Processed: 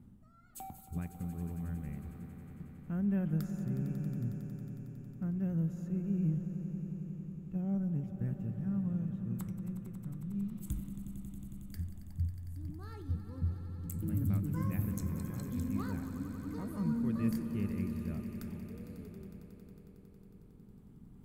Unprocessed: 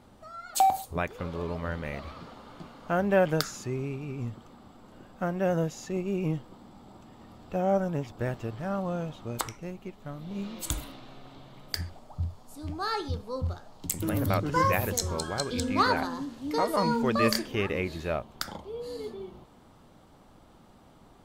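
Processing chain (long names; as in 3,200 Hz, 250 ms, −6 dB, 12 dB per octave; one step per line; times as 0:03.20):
low-shelf EQ 120 Hz −5 dB
echo that builds up and dies away 91 ms, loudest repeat 5, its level −14 dB
reversed playback
upward compression, threshold −42 dBFS
reversed playback
drawn EQ curve 200 Hz 0 dB, 610 Hz −27 dB, 1,800 Hz −22 dB, 2,600 Hz −23 dB, 4,400 Hz −29 dB, 12,000 Hz −13 dB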